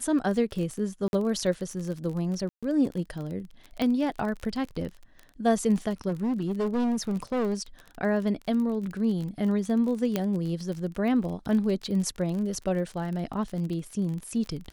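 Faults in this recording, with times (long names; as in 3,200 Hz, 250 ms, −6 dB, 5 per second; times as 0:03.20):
surface crackle 31 per second −33 dBFS
0:01.08–0:01.13: drop-out 51 ms
0:02.49–0:02.63: drop-out 136 ms
0:03.82: click −15 dBFS
0:06.08–0:07.62: clipping −23.5 dBFS
0:10.16: click −12 dBFS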